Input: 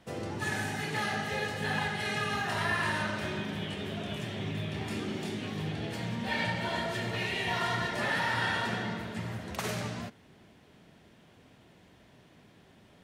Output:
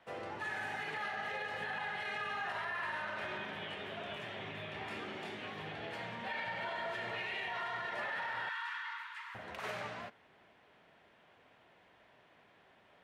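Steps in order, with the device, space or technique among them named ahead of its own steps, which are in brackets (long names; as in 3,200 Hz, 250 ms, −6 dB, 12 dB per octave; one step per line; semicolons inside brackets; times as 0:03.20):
DJ mixer with the lows and highs turned down (three-way crossover with the lows and the highs turned down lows −16 dB, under 500 Hz, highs −16 dB, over 3,100 Hz; brickwall limiter −31 dBFS, peak gain reduction 10 dB)
0:08.49–0:09.35: Butterworth high-pass 910 Hz 96 dB per octave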